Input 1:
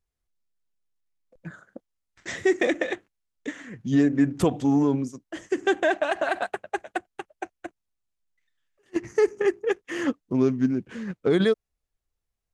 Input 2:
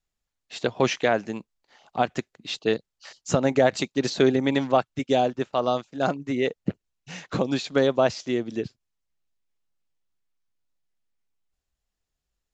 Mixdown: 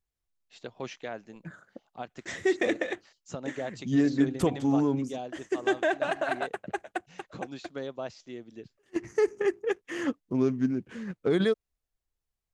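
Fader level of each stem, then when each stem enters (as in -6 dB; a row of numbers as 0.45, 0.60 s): -4.0, -16.0 dB; 0.00, 0.00 s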